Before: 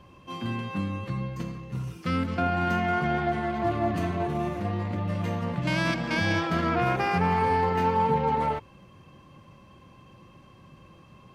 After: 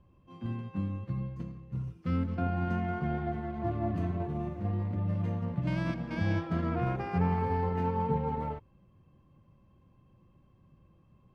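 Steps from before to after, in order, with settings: tilt -3 dB/oct; upward expander 1.5:1, over -34 dBFS; gain -8.5 dB

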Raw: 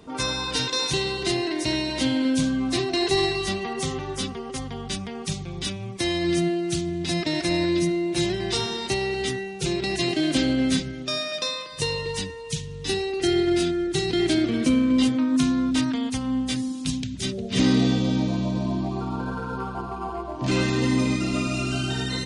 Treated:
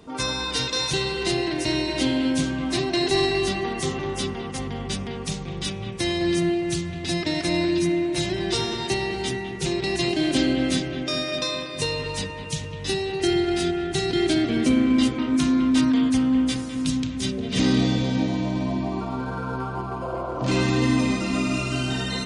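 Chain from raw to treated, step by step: analogue delay 0.205 s, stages 4096, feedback 76%, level -8.5 dB; spectral repair 20.05–20.51, 450–1500 Hz after

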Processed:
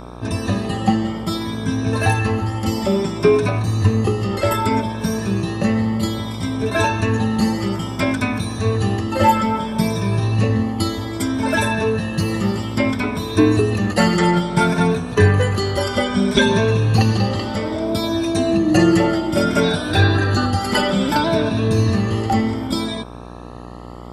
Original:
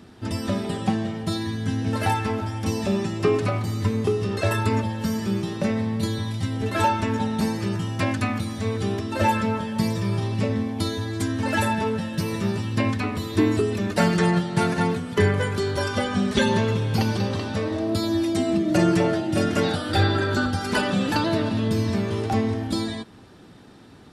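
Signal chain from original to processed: moving spectral ripple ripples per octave 1.6, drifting +0.61 Hz, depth 12 dB; buzz 60 Hz, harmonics 22, -39 dBFS -3 dB/oct; gain +3.5 dB

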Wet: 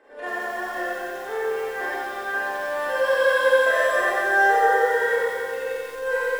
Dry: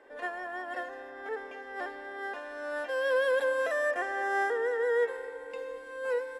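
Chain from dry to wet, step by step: Schroeder reverb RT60 2.2 s, combs from 28 ms, DRR -9 dB; lo-fi delay 90 ms, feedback 80%, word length 7-bit, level -7 dB

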